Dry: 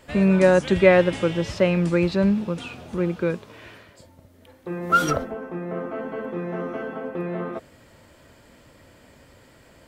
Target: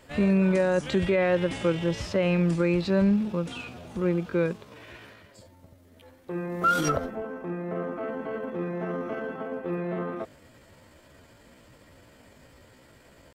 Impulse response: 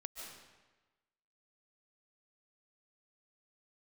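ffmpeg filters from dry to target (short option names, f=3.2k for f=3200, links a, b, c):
-af "atempo=0.74,alimiter=limit=-12.5dB:level=0:latency=1:release=70,volume=-2dB"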